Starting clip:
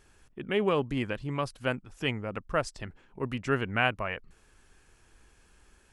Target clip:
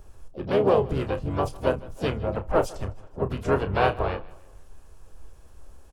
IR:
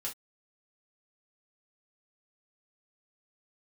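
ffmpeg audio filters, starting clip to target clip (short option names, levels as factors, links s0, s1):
-filter_complex "[0:a]asplit=4[s0][s1][s2][s3];[s1]asetrate=22050,aresample=44100,atempo=2,volume=0.316[s4];[s2]asetrate=29433,aresample=44100,atempo=1.49831,volume=0.562[s5];[s3]asetrate=66075,aresample=44100,atempo=0.66742,volume=0.282[s6];[s0][s4][s5][s6]amix=inputs=4:normalize=0,asplit=2[s7][s8];[s8]adelay=31,volume=0.299[s9];[s7][s9]amix=inputs=2:normalize=0,acrossover=split=310[s10][s11];[s10]acompressor=threshold=0.02:ratio=4[s12];[s12][s11]amix=inputs=2:normalize=0,lowshelf=f=260:g=6,aecho=1:1:156|312|468:0.0841|0.0387|0.0178,asplit=2[s13][s14];[1:a]atrim=start_sample=2205,lowshelf=f=180:g=10[s15];[s14][s15]afir=irnorm=-1:irlink=0,volume=0.168[s16];[s13][s16]amix=inputs=2:normalize=0,asplit=2[s17][s18];[s18]asetrate=52444,aresample=44100,atempo=0.840896,volume=0.316[s19];[s17][s19]amix=inputs=2:normalize=0,equalizer=f=125:t=o:w=1:g=-3,equalizer=f=250:t=o:w=1:g=-7,equalizer=f=500:t=o:w=1:g=4,equalizer=f=2000:t=o:w=1:g=-11,equalizer=f=4000:t=o:w=1:g=-6,equalizer=f=8000:t=o:w=1:g=-3,volume=1.5"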